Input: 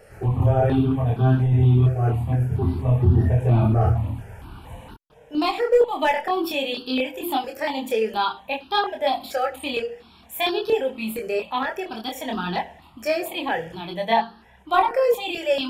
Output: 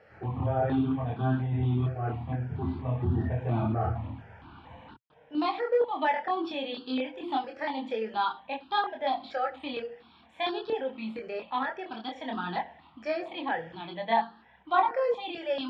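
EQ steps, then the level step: dynamic EQ 2700 Hz, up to -5 dB, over -40 dBFS, Q 1.9; speaker cabinet 120–3800 Hz, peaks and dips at 120 Hz -5 dB, 190 Hz -5 dB, 410 Hz -8 dB, 590 Hz -4 dB, 2700 Hz -4 dB; -4.0 dB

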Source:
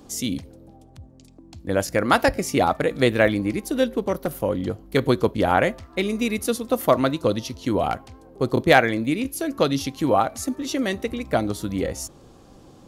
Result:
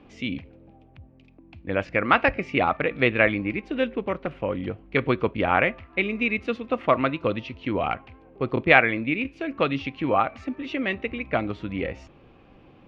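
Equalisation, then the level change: dynamic EQ 1200 Hz, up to +5 dB, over -40 dBFS, Q 4.4; synth low-pass 2500 Hz, resonance Q 4.4; air absorption 110 m; -4.0 dB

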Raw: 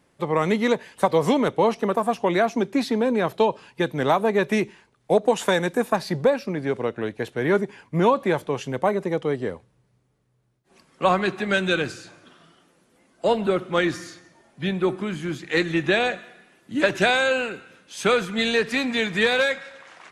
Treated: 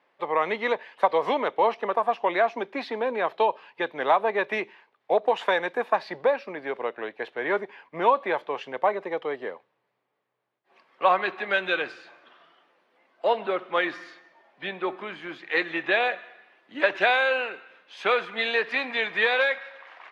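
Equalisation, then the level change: HPF 700 Hz 12 dB/oct; air absorption 350 m; bell 1400 Hz -4.5 dB 0.28 oct; +4.0 dB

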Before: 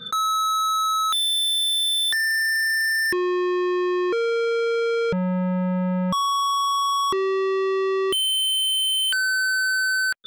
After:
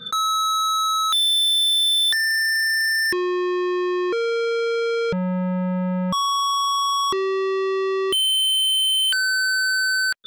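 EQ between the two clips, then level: dynamic EQ 4700 Hz, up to +5 dB, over -36 dBFS, Q 1; 0.0 dB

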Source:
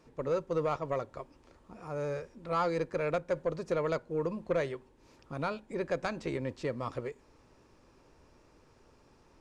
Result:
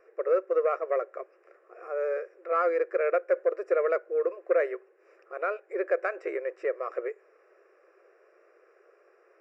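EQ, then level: polynomial smoothing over 25 samples; brick-wall FIR high-pass 330 Hz; fixed phaser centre 910 Hz, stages 6; +7.0 dB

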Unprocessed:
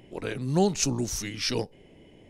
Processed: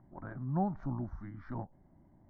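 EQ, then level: LPF 1500 Hz 24 dB/oct; dynamic EQ 600 Hz, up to +5 dB, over -43 dBFS, Q 2.3; fixed phaser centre 1100 Hz, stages 4; -5.0 dB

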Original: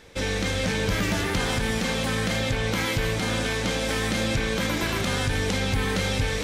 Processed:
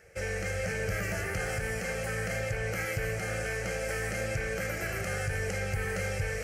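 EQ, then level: HPF 51 Hz; fixed phaser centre 990 Hz, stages 6; -4.0 dB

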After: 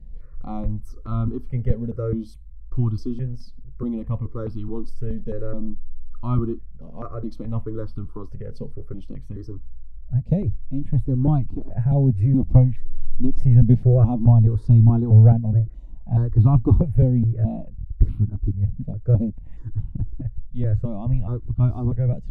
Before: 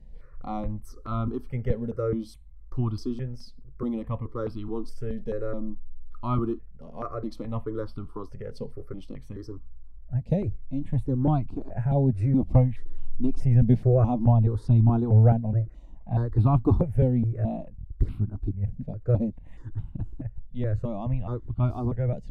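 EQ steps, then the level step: low shelf 280 Hz +11.5 dB; -3.5 dB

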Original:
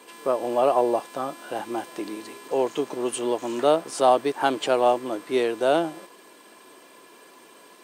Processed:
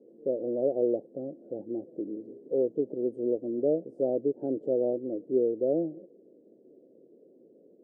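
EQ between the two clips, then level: elliptic low-pass 530 Hz, stop band 50 dB; -1.5 dB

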